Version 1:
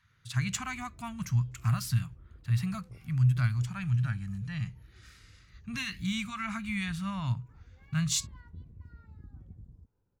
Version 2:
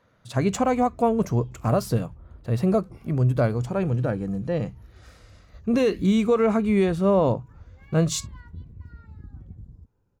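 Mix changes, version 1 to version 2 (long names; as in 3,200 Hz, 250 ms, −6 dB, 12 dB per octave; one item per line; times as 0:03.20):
speech: remove Chebyshev band-stop filter 110–1,800 Hz, order 2
background +7.0 dB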